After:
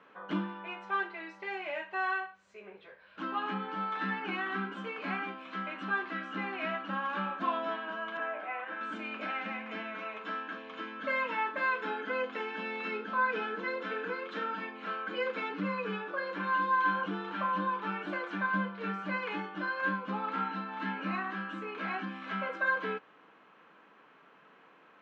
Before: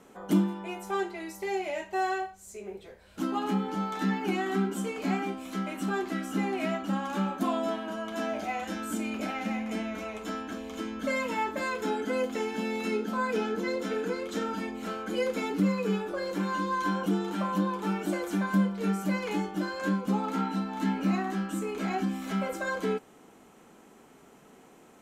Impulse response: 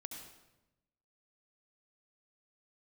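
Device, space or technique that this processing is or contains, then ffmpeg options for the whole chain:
kitchen radio: -filter_complex "[0:a]asettb=1/sr,asplit=3[link_01][link_02][link_03];[link_01]atrim=end=8.174[link_04];[link_02]atrim=start=8.17:end=8.81,asetpts=PTS-STARTPTS,afade=type=in:duration=0.004:curve=qsin,afade=type=out:start_time=0.636:duration=0.004:curve=qsin,acrossover=split=290 2600:gain=0.0708 1 0.0891[link_05][link_06][link_07];[link_05][link_06][link_07]amix=inputs=3:normalize=0[link_08];[link_03]atrim=start=8.806[link_09];[link_04][link_08]acrossfade=duration=0.004:curve1=hsin:curve2=qsin[link_10];[link_10][link_09]acrossfade=duration=0.004:curve1=qsin:curve2=hsin,highpass=230,equalizer=frequency=240:width_type=q:width=4:gain=-9,equalizer=frequency=380:width_type=q:width=4:gain=-8,equalizer=frequency=750:width_type=q:width=4:gain=-5,equalizer=frequency=1100:width_type=q:width=4:gain=7,equalizer=frequency=1600:width_type=q:width=4:gain=8,equalizer=frequency=2600:width_type=q:width=4:gain=4,lowpass=frequency=3700:width=0.5412,lowpass=frequency=3700:width=1.3066,volume=-3dB"

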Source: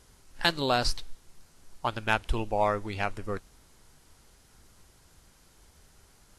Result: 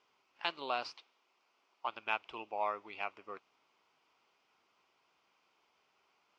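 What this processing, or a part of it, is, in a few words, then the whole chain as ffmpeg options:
phone earpiece: -filter_complex "[0:a]highpass=500,equalizer=frequency=530:width_type=q:width=4:gain=-4,equalizer=frequency=1100:width_type=q:width=4:gain=4,equalizer=frequency=1700:width_type=q:width=4:gain=-9,equalizer=frequency=2500:width_type=q:width=4:gain=6,equalizer=frequency=4000:width_type=q:width=4:gain=-8,lowpass=frequency=4400:width=0.5412,lowpass=frequency=4400:width=1.3066,asettb=1/sr,asplit=3[link_01][link_02][link_03];[link_01]atrim=end=0.944[link_04];[link_02]atrim=start=0.94:end=1.88,asetpts=PTS-STARTPTS,afade=type=in:duration=0.004:curve=qsin,afade=type=out:start_time=0.936:duration=0.004:curve=qsin,highpass=250[link_05];[link_03]atrim=start=1.876[link_06];[link_04][link_05]acrossfade=duration=0.004:curve1=hsin:curve2=qsin[link_07];[link_07][link_06]acrossfade=duration=0.004:curve1=qsin:curve2=hsin,volume=-8dB"

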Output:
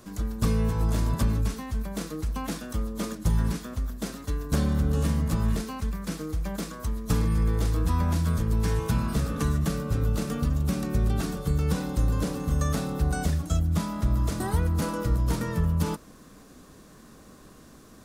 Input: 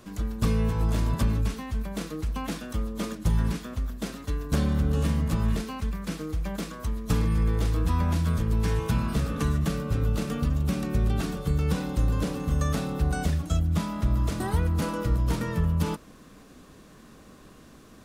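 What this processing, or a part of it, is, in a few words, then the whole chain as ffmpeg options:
exciter from parts: -filter_complex "[0:a]asplit=2[link_01][link_02];[link_02]highpass=2700,asoftclip=type=tanh:threshold=-34dB,highpass=2100,volume=-5dB[link_03];[link_01][link_03]amix=inputs=2:normalize=0"

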